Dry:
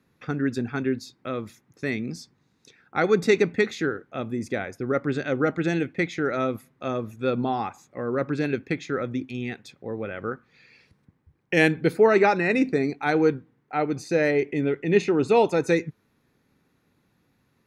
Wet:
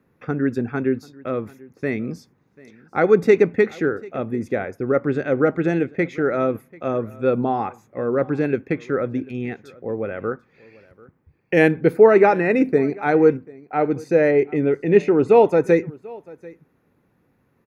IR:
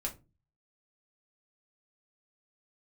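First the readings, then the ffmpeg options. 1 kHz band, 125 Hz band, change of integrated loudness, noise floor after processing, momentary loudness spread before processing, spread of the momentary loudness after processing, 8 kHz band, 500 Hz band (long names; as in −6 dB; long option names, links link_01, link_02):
+3.5 dB, +3.0 dB, +5.0 dB, −64 dBFS, 13 LU, 14 LU, can't be measured, +6.5 dB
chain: -af "equalizer=frequency=500:width_type=o:width=1:gain=4,equalizer=frequency=4000:width_type=o:width=1:gain=-10,equalizer=frequency=8000:width_type=o:width=1:gain=-9,aecho=1:1:740:0.0708,volume=3dB"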